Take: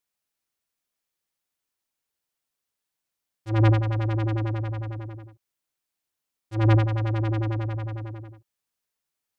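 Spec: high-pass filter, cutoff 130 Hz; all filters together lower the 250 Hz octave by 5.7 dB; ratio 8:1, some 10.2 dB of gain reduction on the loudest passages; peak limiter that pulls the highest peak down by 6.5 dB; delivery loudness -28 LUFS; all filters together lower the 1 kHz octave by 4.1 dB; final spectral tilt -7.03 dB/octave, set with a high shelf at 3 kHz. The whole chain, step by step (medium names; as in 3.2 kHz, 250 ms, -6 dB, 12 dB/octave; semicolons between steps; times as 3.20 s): high-pass 130 Hz; peaking EQ 250 Hz -8.5 dB; peaking EQ 1 kHz -4 dB; treble shelf 3 kHz -8 dB; compression 8:1, threshold -28 dBFS; trim +10 dB; peak limiter -16.5 dBFS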